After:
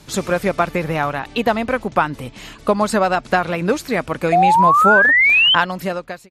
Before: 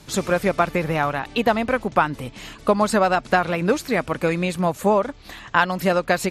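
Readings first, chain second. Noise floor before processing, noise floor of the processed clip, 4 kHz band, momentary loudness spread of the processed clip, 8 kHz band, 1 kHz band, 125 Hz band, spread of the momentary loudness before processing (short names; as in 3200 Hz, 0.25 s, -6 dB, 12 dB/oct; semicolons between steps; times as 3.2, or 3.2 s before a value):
-45 dBFS, -43 dBFS, +12.5 dB, 14 LU, +0.5 dB, +6.0 dB, +1.0 dB, 5 LU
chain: ending faded out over 0.73 s; painted sound rise, 4.32–5.55, 670–3200 Hz -14 dBFS; gain +1.5 dB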